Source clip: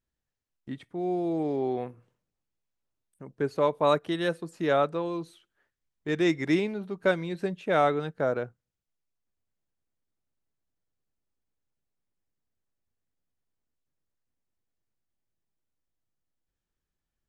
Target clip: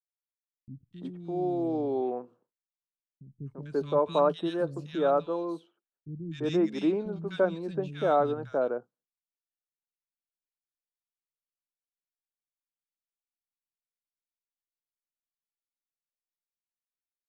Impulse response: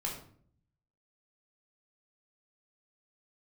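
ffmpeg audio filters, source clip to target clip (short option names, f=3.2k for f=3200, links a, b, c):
-filter_complex "[0:a]aemphasis=mode=reproduction:type=50fm,agate=range=-33dB:threshold=-56dB:ratio=3:detection=peak,equalizer=f=2k:w=2.9:g=-13.5,acrossover=split=200|1900[a][b][c];[c]adelay=250[d];[b]adelay=340[e];[a][e][d]amix=inputs=3:normalize=0"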